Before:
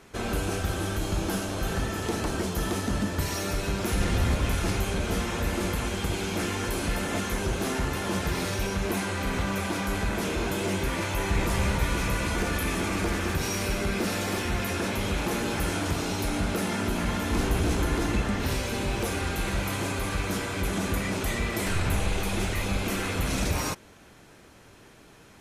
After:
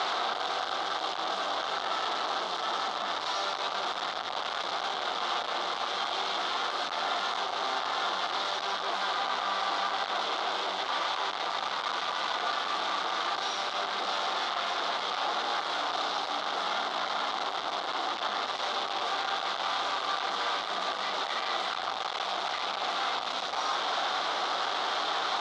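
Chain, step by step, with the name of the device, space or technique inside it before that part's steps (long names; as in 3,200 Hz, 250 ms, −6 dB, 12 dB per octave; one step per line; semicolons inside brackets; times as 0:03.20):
home computer beeper (sign of each sample alone; loudspeaker in its box 740–4,500 Hz, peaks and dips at 750 Hz +9 dB, 1,200 Hz +7 dB, 1,800 Hz −5 dB, 2,500 Hz −9 dB, 3,600 Hz +6 dB)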